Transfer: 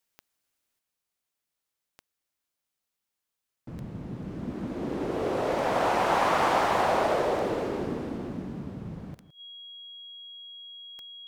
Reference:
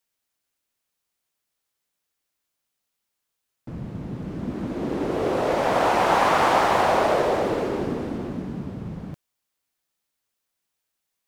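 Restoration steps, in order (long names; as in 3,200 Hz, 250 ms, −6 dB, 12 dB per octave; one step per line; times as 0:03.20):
click removal
notch filter 3,300 Hz, Q 30
echo removal 162 ms −15 dB
level correction +5 dB, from 0:00.79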